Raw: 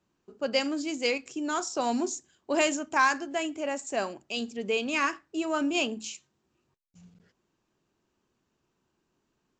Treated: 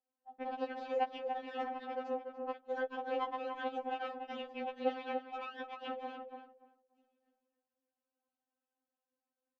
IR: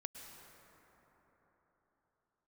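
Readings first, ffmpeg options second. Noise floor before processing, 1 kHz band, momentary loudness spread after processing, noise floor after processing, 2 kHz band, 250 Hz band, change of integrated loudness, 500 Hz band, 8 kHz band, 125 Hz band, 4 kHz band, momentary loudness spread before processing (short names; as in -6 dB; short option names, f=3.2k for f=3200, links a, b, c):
-78 dBFS, -6.5 dB, 8 LU, under -85 dBFS, -16.0 dB, -15.0 dB, -10.5 dB, -7.5 dB, under -40 dB, n/a, -17.0 dB, 9 LU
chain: -filter_complex "[0:a]acrossover=split=630|690[a][b][c];[c]alimiter=limit=-23dB:level=0:latency=1:release=34[d];[a][b][d]amix=inputs=3:normalize=0,aeval=exprs='0.178*(cos(1*acos(clip(val(0)/0.178,-1,1)))-cos(1*PI/2))+0.0794*(cos(3*acos(clip(val(0)/0.178,-1,1)))-cos(3*PI/2))+0.0501*(cos(4*acos(clip(val(0)/0.178,-1,1)))-cos(4*PI/2))+0.0158*(cos(5*acos(clip(val(0)/0.178,-1,1)))-cos(5*PI/2))+0.0355*(cos(8*acos(clip(val(0)/0.178,-1,1)))-cos(8*PI/2))':c=same,lowshelf=f=260:g=10.5,asoftclip=type=hard:threshold=-21dB,deesser=0.95,highpass=200,equalizer=f=260:t=q:w=4:g=-7,equalizer=f=480:t=q:w=4:g=6,equalizer=f=770:t=q:w=4:g=7,equalizer=f=1.1k:t=q:w=4:g=-3,equalizer=f=2.1k:t=q:w=4:g=-8,lowpass=f=2.9k:w=0.5412,lowpass=f=2.9k:w=1.3066,asplit=2[e][f];[f]adelay=290,lowpass=f=1.7k:p=1,volume=-5dB,asplit=2[g][h];[h]adelay=290,lowpass=f=1.7k:p=1,volume=0.2,asplit=2[i][j];[j]adelay=290,lowpass=f=1.7k:p=1,volume=0.2[k];[e][g][i][k]amix=inputs=4:normalize=0,afftfilt=real='re*3.46*eq(mod(b,12),0)':imag='im*3.46*eq(mod(b,12),0)':win_size=2048:overlap=0.75,volume=4.5dB"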